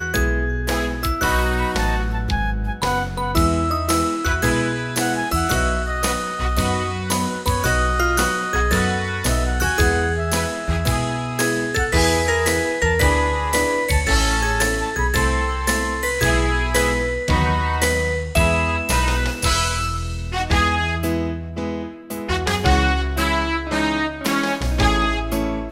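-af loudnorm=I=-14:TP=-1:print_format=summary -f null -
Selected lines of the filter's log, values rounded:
Input Integrated:    -20.1 LUFS
Input True Peak:      -4.4 dBTP
Input LRA:             2.4 LU
Input Threshold:     -30.1 LUFS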